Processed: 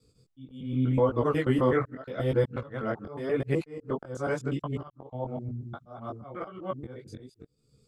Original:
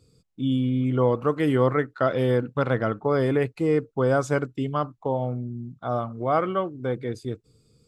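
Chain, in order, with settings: local time reversal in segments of 0.122 s; auto swell 0.382 s; chorus voices 2, 0.84 Hz, delay 19 ms, depth 5 ms

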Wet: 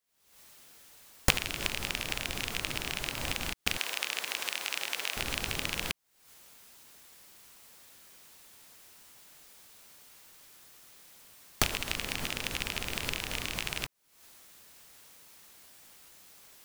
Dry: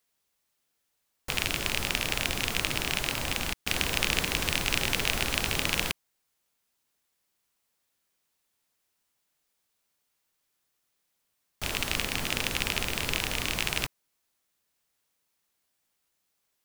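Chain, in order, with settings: recorder AGC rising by 76 dB/s; 3.77–5.17 HPF 570 Hz 12 dB/oct; gain -8 dB

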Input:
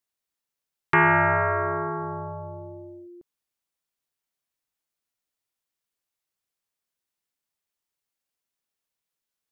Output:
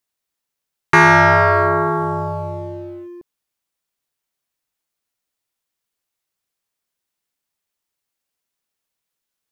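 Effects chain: sample leveller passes 1; gain +7 dB

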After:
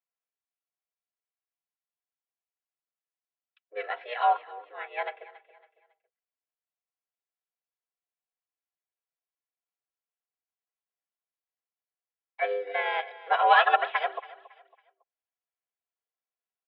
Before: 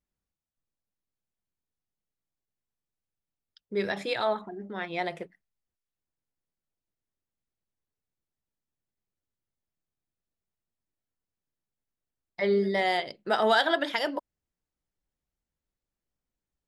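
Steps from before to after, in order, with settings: on a send: feedback echo 0.277 s, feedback 34%, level -14 dB; on the sum: harmoniser -5 st -3 dB; comb 3.2 ms, depth 59%; mistuned SSB +110 Hz 420–3000 Hz; upward expander 1.5:1, over -34 dBFS; gain +1.5 dB

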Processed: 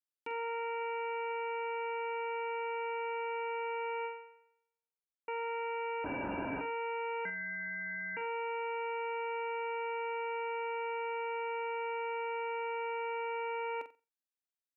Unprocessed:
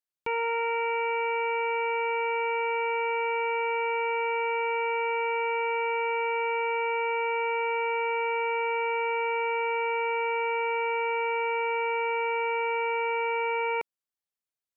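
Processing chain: 7.25–8.17 inverted band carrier 2500 Hz; low shelf 390 Hz -12 dB; 6.04–6.61 LPC vocoder at 8 kHz whisper; bell 280 Hz +15 dB 0.38 oct; notch comb 1100 Hz; flutter echo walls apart 7.8 m, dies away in 0.28 s; 0.81–1.32 fast leveller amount 100%; 4.05–5.28 fade out exponential; gain -7.5 dB

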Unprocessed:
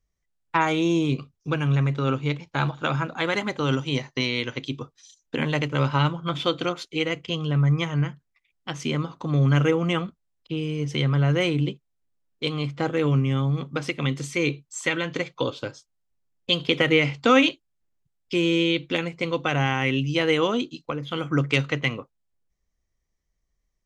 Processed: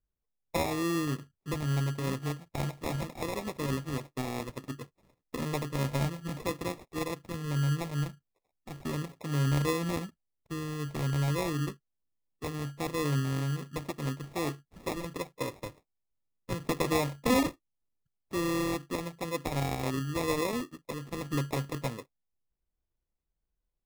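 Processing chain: high shelf 3800 Hz -10 dB; sample-and-hold 29×; gain -8 dB

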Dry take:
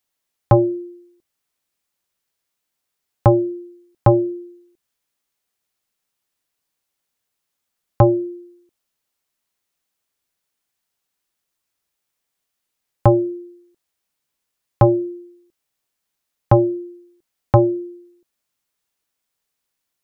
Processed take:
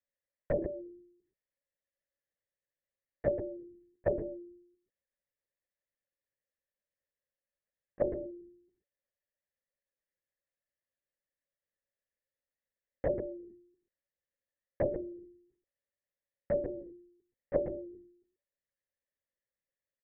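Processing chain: tilt -3.5 dB/oct; compressor 2.5:1, threshold -13 dBFS, peak gain reduction 10 dB; double band-pass 1000 Hz, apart 1.7 oct; echo 0.132 s -11.5 dB; LPC vocoder at 8 kHz whisper; gain -4 dB

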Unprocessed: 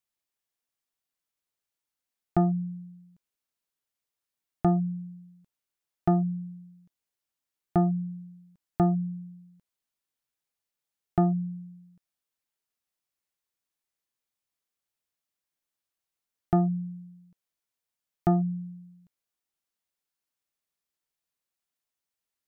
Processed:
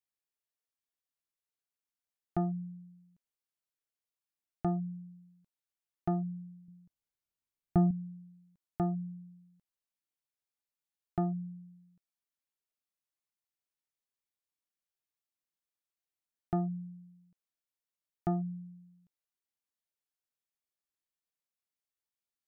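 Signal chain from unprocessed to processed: 6.68–7.91 low shelf 200 Hz +12 dB; gain -8.5 dB

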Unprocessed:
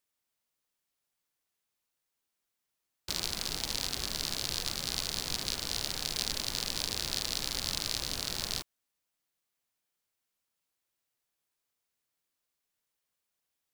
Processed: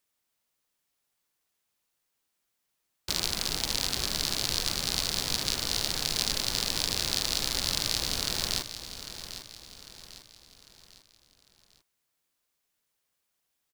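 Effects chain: feedback echo 0.799 s, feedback 44%, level -11.5 dB; gain +4.5 dB

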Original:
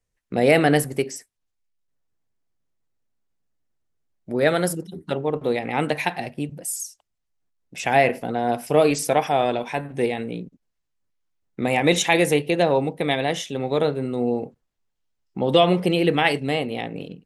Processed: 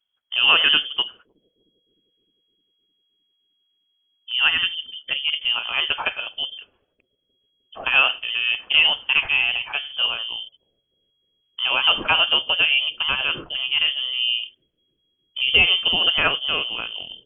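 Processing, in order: inverted band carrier 3300 Hz; analogue delay 0.306 s, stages 1024, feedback 67%, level -24 dB

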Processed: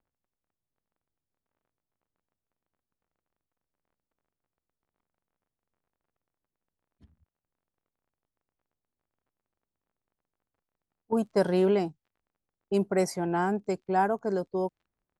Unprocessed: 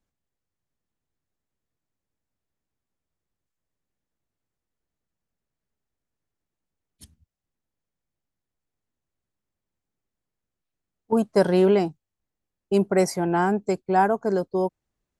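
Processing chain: crackle 29/s -48 dBFS; low-pass opened by the level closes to 1200 Hz, open at -18 dBFS; gain -5.5 dB

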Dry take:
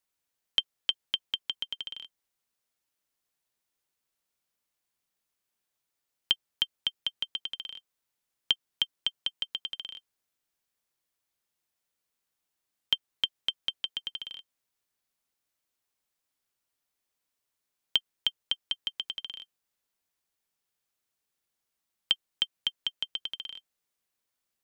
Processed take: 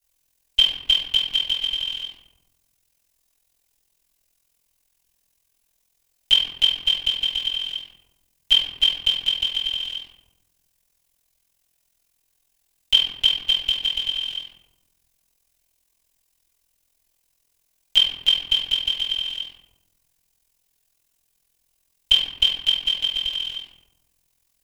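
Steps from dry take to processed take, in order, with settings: low shelf 76 Hz +11.5 dB; notch 1300 Hz, Q 5.8; reverb RT60 1.0 s, pre-delay 3 ms, DRR -15.5 dB; AM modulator 42 Hz, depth 60%; high shelf 3100 Hz +11.5 dB; gain -6.5 dB

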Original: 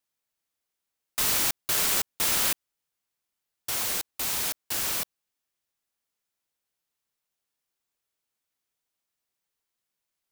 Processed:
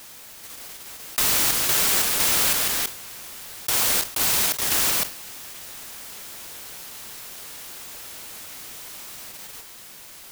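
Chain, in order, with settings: echoes that change speed 0.426 s, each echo +2 st, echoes 2, each echo -6 dB; in parallel at -2.5 dB: level quantiser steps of 14 dB; on the sum: modulation noise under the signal 17 dB; fast leveller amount 70%

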